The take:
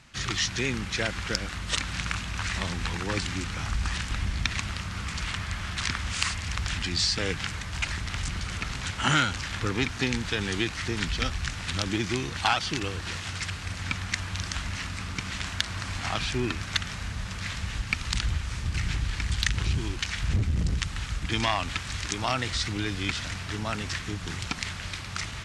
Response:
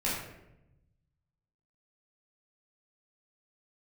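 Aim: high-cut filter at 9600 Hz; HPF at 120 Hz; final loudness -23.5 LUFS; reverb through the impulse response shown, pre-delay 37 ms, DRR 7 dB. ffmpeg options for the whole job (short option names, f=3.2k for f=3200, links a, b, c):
-filter_complex "[0:a]highpass=120,lowpass=9.6k,asplit=2[a][b];[1:a]atrim=start_sample=2205,adelay=37[c];[b][c]afir=irnorm=-1:irlink=0,volume=-15dB[d];[a][d]amix=inputs=2:normalize=0,volume=6.5dB"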